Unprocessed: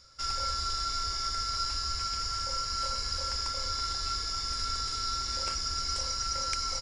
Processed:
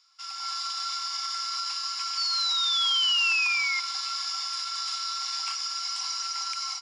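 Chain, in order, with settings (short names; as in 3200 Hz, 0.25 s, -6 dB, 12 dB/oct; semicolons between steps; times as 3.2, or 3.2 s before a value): AGC gain up to 10 dB; limiter -15 dBFS, peak gain reduction 8.5 dB; painted sound fall, 2.17–3.8, 2100–4600 Hz -24 dBFS; rippled Chebyshev high-pass 750 Hz, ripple 9 dB; on a send: tape echo 0.167 s, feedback 59%, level -20 dB, low-pass 2400 Hz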